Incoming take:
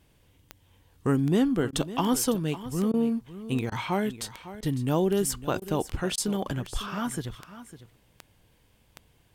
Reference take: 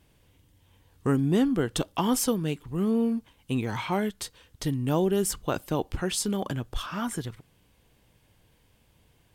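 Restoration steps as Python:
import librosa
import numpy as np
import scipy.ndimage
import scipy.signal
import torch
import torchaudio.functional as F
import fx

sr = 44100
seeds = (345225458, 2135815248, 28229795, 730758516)

y = fx.fix_declick_ar(x, sr, threshold=10.0)
y = fx.fix_interpolate(y, sr, at_s=(1.71, 2.92, 3.7, 4.61, 5.6, 6.16), length_ms=16.0)
y = fx.fix_echo_inverse(y, sr, delay_ms=553, level_db=-14.5)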